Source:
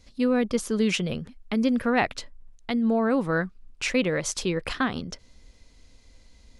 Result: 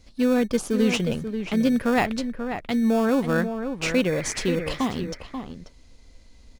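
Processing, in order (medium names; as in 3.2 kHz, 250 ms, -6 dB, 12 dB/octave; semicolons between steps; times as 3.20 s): spectral replace 4.14–4.87 s, 1.2–2.5 kHz; in parallel at -10 dB: sample-and-hold 22×; on the sum: echo from a far wall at 92 m, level -8 dB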